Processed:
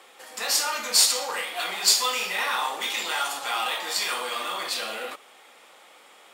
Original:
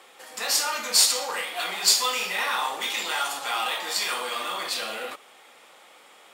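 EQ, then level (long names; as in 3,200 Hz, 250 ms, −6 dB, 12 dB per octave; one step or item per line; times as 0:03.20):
high-pass filter 150 Hz
0.0 dB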